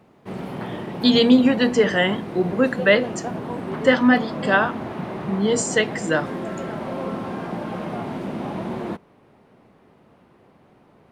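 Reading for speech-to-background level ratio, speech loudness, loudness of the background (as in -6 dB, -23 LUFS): 10.5 dB, -19.5 LUFS, -30.0 LUFS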